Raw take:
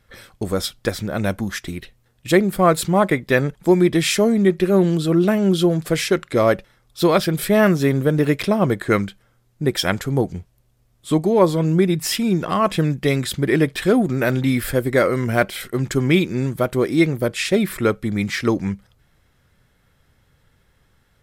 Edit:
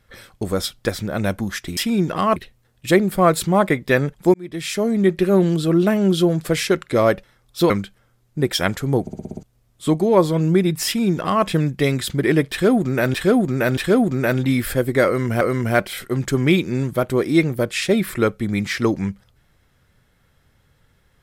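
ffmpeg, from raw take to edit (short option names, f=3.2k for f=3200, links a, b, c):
-filter_complex "[0:a]asplit=15[a][b][c][d][e][f][g][h][i][j][k][l][m][n][o];[a]atrim=end=1.772[p];[b]atrim=start=12.098:end=12.692[q];[c]atrim=start=1.768:end=3.75,asetpts=PTS-STARTPTS,afade=t=out:st=1.978:d=0.004:c=hsin[r];[d]atrim=start=3.75:end=7.112,asetpts=PTS-STARTPTS,afade=t=in:d=0.77[s];[e]atrim=start=8.938:end=10.312[t];[f]atrim=start=10.248:end=10.312[u];[g]atrim=start=10.248:end=10.312[v];[h]atrim=start=10.248:end=10.312[w];[i]atrim=start=10.248:end=10.312[x];[j]atrim=start=10.248:end=10.312[y];[k]atrim=start=10.248:end=10.312[z];[l]atrim=start=10.668:end=14.382[aa];[m]atrim=start=13.748:end=14.382[ab];[n]atrim=start=13.748:end=15.392[ac];[o]atrim=start=15.038[ad];[p][q]acrossfade=d=0.004:c1=hsin:c2=hsin[ae];[r][s]concat=n=2:v=0:a=1[af];[ae][af]acrossfade=d=0.004:c1=hsin:c2=hsin[ag];[ag][t]acrossfade=d=0.004:c1=hsin:c2=hsin[ah];[ah][u]acrossfade=d=0.004:c1=hsin:c2=hsin[ai];[ai][v]acrossfade=d=0.004:c1=hsin:c2=hsin[aj];[aj][w]acrossfade=d=0.004:c1=hsin:c2=hsin[ak];[ak][x]acrossfade=d=0.004:c1=hsin:c2=hsin[al];[al][y]acrossfade=d=0.004:c1=hsin:c2=hsin[am];[am][z]acrossfade=d=0.004:c1=hsin:c2=hsin[an];[an][aa]acrossfade=d=0.004:c1=hsin:c2=hsin[ao];[ao][ab]acrossfade=d=0.004:c1=hsin:c2=hsin[ap];[ap][ac]acrossfade=d=0.004:c1=hsin:c2=hsin[aq];[aq][ad]acrossfade=d=0.004:c1=hsin:c2=hsin"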